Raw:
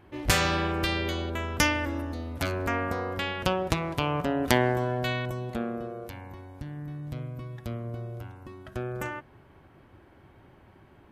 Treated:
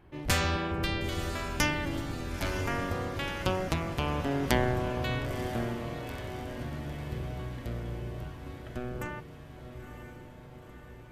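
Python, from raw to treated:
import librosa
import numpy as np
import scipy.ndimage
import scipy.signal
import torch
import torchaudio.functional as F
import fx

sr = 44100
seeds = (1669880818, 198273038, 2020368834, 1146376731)

y = fx.octave_divider(x, sr, octaves=1, level_db=0.0)
y = fx.echo_diffused(y, sr, ms=965, feedback_pct=64, wet_db=-9.5)
y = y * 10.0 ** (-4.5 / 20.0)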